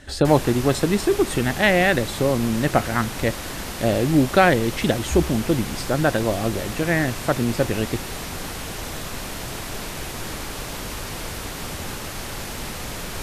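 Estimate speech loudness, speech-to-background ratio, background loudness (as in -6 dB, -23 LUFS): -21.0 LUFS, 10.0 dB, -31.0 LUFS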